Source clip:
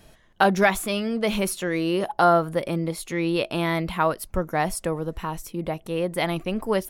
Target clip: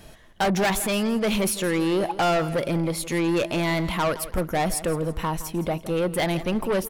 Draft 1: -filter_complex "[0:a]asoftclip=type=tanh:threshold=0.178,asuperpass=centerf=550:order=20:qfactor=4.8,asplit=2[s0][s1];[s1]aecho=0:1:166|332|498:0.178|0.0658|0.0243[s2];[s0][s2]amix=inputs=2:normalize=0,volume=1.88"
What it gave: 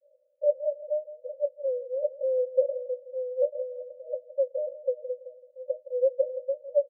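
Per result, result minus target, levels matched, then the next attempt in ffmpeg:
saturation: distortion -8 dB; 500 Hz band +5.0 dB
-filter_complex "[0:a]asoftclip=type=tanh:threshold=0.0596,asuperpass=centerf=550:order=20:qfactor=4.8,asplit=2[s0][s1];[s1]aecho=0:1:166|332|498:0.178|0.0658|0.0243[s2];[s0][s2]amix=inputs=2:normalize=0,volume=1.88"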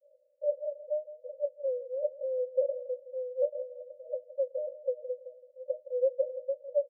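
500 Hz band +5.0 dB
-filter_complex "[0:a]asoftclip=type=tanh:threshold=0.0596,asplit=2[s0][s1];[s1]aecho=0:1:166|332|498:0.178|0.0658|0.0243[s2];[s0][s2]amix=inputs=2:normalize=0,volume=1.88"

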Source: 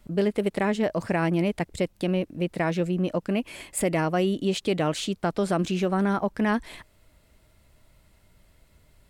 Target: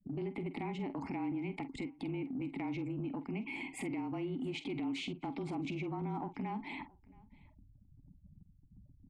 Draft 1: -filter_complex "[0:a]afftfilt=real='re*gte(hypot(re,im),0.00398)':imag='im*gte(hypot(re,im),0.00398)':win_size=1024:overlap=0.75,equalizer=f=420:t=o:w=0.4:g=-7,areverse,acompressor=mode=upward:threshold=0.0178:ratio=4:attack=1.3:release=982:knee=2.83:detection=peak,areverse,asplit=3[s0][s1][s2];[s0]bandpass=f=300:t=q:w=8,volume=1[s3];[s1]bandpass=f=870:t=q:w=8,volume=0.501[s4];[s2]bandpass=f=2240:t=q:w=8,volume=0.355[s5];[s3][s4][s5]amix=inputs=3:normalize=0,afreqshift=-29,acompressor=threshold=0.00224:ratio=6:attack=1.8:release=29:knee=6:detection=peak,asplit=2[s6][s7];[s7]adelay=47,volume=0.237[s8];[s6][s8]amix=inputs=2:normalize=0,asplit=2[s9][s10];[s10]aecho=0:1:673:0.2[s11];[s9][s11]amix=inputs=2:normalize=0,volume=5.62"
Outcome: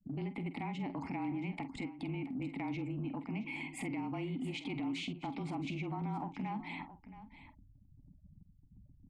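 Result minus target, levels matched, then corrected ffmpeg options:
echo-to-direct +11 dB; 500 Hz band -3.5 dB
-filter_complex "[0:a]afftfilt=real='re*gte(hypot(re,im),0.00398)':imag='im*gte(hypot(re,im),0.00398)':win_size=1024:overlap=0.75,equalizer=f=420:t=o:w=0.4:g=3.5,areverse,acompressor=mode=upward:threshold=0.0178:ratio=4:attack=1.3:release=982:knee=2.83:detection=peak,areverse,asplit=3[s0][s1][s2];[s0]bandpass=f=300:t=q:w=8,volume=1[s3];[s1]bandpass=f=870:t=q:w=8,volume=0.501[s4];[s2]bandpass=f=2240:t=q:w=8,volume=0.355[s5];[s3][s4][s5]amix=inputs=3:normalize=0,afreqshift=-29,acompressor=threshold=0.00224:ratio=6:attack=1.8:release=29:knee=6:detection=peak,asplit=2[s6][s7];[s7]adelay=47,volume=0.237[s8];[s6][s8]amix=inputs=2:normalize=0,asplit=2[s9][s10];[s10]aecho=0:1:673:0.0562[s11];[s9][s11]amix=inputs=2:normalize=0,volume=5.62"

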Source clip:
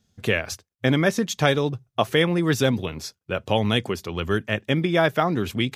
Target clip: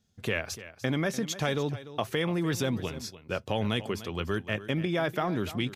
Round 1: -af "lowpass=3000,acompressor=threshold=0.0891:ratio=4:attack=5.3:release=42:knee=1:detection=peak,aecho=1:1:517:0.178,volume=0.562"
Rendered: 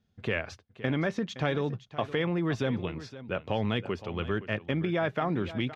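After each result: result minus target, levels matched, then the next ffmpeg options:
echo 222 ms late; 4 kHz band -4.0 dB
-af "lowpass=3000,acompressor=threshold=0.0891:ratio=4:attack=5.3:release=42:knee=1:detection=peak,aecho=1:1:295:0.178,volume=0.562"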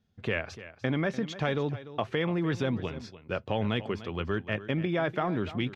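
4 kHz band -4.0 dB
-af "acompressor=threshold=0.0891:ratio=4:attack=5.3:release=42:knee=1:detection=peak,aecho=1:1:295:0.178,volume=0.562"

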